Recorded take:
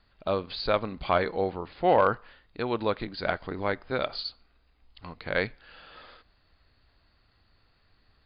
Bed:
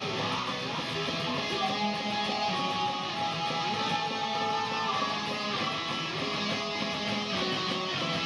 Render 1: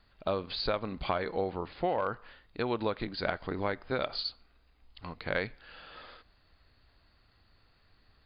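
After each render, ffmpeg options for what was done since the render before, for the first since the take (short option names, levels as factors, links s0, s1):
-af "acompressor=threshold=0.0501:ratio=12"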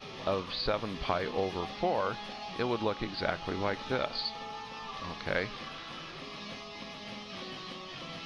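-filter_complex "[1:a]volume=0.251[s0];[0:a][s0]amix=inputs=2:normalize=0"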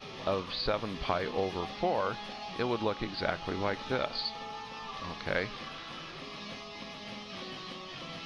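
-af anull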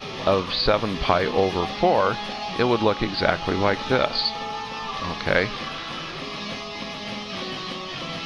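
-af "volume=3.55"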